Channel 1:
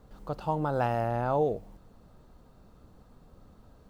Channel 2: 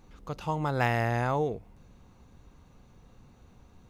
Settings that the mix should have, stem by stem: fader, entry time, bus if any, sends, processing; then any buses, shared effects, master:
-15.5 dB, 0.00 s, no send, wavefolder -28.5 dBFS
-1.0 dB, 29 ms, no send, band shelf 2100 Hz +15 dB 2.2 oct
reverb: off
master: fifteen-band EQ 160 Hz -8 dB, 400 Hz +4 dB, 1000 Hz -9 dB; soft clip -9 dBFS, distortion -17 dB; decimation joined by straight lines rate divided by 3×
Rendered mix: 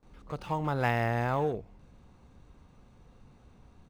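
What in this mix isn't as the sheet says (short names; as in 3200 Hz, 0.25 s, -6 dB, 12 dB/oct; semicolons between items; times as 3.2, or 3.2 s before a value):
stem 2: missing band shelf 2100 Hz +15 dB 2.2 oct; master: missing fifteen-band EQ 160 Hz -8 dB, 400 Hz +4 dB, 1000 Hz -9 dB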